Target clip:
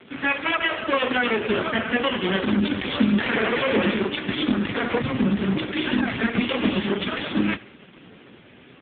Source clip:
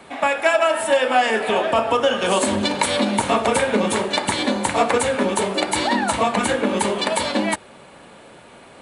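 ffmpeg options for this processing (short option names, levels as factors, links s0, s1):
-filter_complex "[0:a]asettb=1/sr,asplit=3[s0][s1][s2];[s0]atrim=end=3.194[s3];[s1]atrim=start=3.19:end=3.94,asetpts=PTS-STARTPTS,afade=t=in:d=0.004:c=qsin,afade=t=out:st=0.746:d=0.004:c=qsin,asplit=2[s4][s5];[s5]highpass=f=720:p=1,volume=15.8,asoftclip=type=tanh:threshold=0.562[s6];[s4][s6]amix=inputs=2:normalize=0,lowpass=f=1800:p=1,volume=0.501[s7];[s2]atrim=start=3.936[s8];[s3][s7]acrossfade=d=0.004:c1=hsin:c2=qsin[s9];[s9][s8]acrossfade=d=0.004:c1=qsin:c2=hsin,asettb=1/sr,asplit=3[s10][s11][s12];[s10]atrim=end=6.394[s13];[s11]atrim=start=6.39:end=6.87,asetpts=PTS-STARTPTS,afade=t=in:d=0.004:c=qsin,afade=t=out:st=0.476:d=0.004:c=qsin,highshelf=f=2500:g=10[s14];[s12]atrim=start=6.866[s15];[s13][s14]acrossfade=d=0.004:c1=hsin:c2=qsin[s16];[s16][s15]acrossfade=d=0.004:c1=qsin:c2=hsin,acrossover=split=460|2100[s17][s18][s19];[s18]aeval=exprs='abs(val(0))':c=same[s20];[s17][s20][s19]amix=inputs=3:normalize=0,asplit=3[s21][s22][s23];[s21]afade=t=out:st=4.99:d=0.02[s24];[s22]asubboost=boost=4.5:cutoff=200,afade=t=in:st=4.99:d=0.02,afade=t=out:st=5.62:d=0.02[s25];[s23]afade=t=in:st=5.62:d=0.02[s26];[s24][s25][s26]amix=inputs=3:normalize=0,aecho=1:1:69|138|207|276|345:0.0944|0.0566|0.034|0.0204|0.0122,alimiter=level_in=2.99:limit=0.891:release=50:level=0:latency=1,volume=0.596" -ar 8000 -c:a libopencore_amrnb -b:a 5150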